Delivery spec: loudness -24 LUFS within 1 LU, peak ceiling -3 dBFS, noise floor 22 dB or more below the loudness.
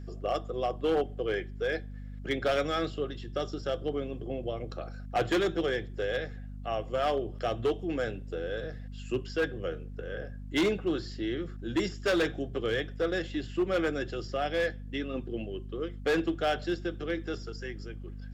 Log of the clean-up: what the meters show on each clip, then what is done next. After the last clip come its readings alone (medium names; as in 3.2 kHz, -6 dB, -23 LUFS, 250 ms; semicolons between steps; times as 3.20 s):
clipped samples 1.5%; clipping level -22.0 dBFS; hum 50 Hz; highest harmonic 250 Hz; hum level -39 dBFS; loudness -32.5 LUFS; peak level -22.0 dBFS; loudness target -24.0 LUFS
-> clip repair -22 dBFS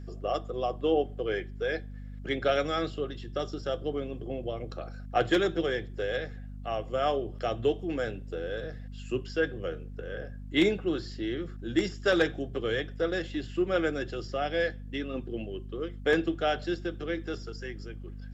clipped samples 0.0%; hum 50 Hz; highest harmonic 250 Hz; hum level -39 dBFS
-> de-hum 50 Hz, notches 5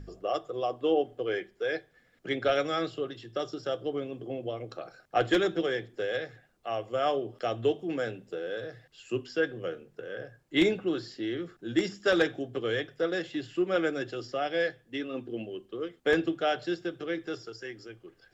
hum not found; loudness -31.5 LUFS; peak level -12.5 dBFS; loudness target -24.0 LUFS
-> trim +7.5 dB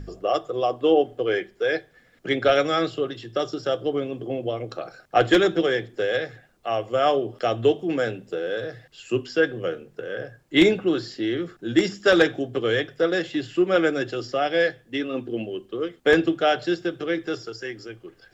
loudness -24.0 LUFS; peak level -5.0 dBFS; noise floor -58 dBFS